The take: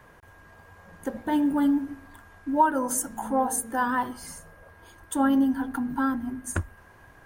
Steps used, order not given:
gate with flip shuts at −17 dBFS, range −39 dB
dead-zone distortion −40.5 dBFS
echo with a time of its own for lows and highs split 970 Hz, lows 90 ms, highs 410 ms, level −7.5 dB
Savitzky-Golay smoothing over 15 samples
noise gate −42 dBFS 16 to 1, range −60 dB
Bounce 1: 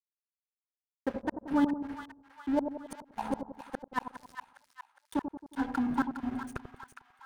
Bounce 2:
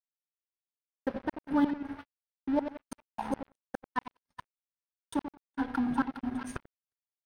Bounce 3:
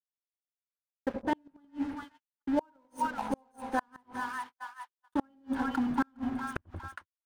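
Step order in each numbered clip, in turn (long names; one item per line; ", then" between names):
noise gate, then gate with flip, then Savitzky-Golay smoothing, then dead-zone distortion, then echo with a time of its own for lows and highs
gate with flip, then echo with a time of its own for lows and highs, then dead-zone distortion, then noise gate, then Savitzky-Golay smoothing
Savitzky-Golay smoothing, then dead-zone distortion, then echo with a time of its own for lows and highs, then noise gate, then gate with flip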